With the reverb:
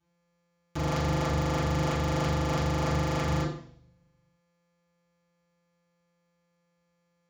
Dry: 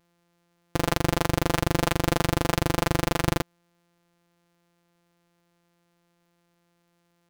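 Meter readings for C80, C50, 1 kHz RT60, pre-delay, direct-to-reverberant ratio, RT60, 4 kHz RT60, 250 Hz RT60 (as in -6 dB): 8.5 dB, 4.5 dB, 0.60 s, 3 ms, -10.0 dB, 0.60 s, 0.65 s, 0.75 s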